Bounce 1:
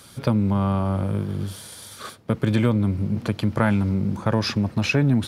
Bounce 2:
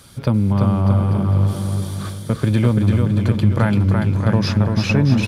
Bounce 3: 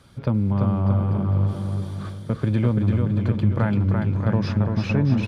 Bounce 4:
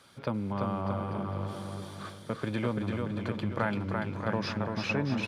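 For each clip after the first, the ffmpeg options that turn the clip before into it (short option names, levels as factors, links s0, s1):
-filter_complex "[0:a]lowshelf=f=110:g=10.5,asplit=2[s0][s1];[s1]aecho=0:1:340|629|874.6|1083|1261:0.631|0.398|0.251|0.158|0.1[s2];[s0][s2]amix=inputs=2:normalize=0"
-af "aemphasis=mode=reproduction:type=75kf,volume=0.596"
-af "highpass=f=640:p=1"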